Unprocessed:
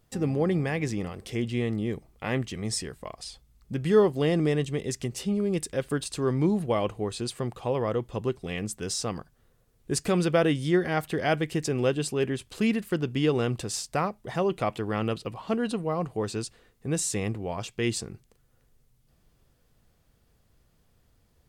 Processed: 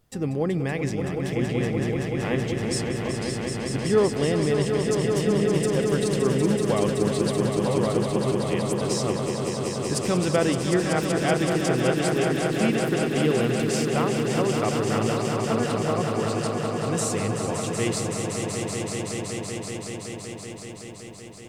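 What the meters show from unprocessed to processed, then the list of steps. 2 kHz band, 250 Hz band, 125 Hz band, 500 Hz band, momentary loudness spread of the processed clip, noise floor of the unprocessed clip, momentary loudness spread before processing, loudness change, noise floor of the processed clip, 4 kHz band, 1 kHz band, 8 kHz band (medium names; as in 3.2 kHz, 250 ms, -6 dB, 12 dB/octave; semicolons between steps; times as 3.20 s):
+4.5 dB, +4.0 dB, +4.5 dB, +4.5 dB, 7 LU, -66 dBFS, 10 LU, +3.5 dB, -38 dBFS, +4.5 dB, +4.5 dB, +4.5 dB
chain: echo with a slow build-up 189 ms, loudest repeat 5, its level -7 dB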